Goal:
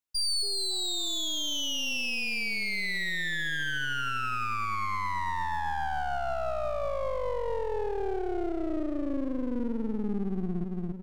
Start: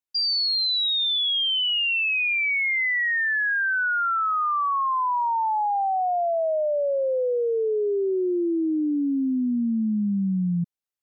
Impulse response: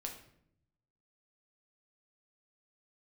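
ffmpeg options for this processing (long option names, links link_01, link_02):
-af "aecho=1:1:280|560|840|1120|1400:0.473|0.185|0.072|0.0281|0.0109,alimiter=limit=-21.5dB:level=0:latency=1:release=148,aeval=exprs='clip(val(0),-1,0.00562)':channel_layout=same"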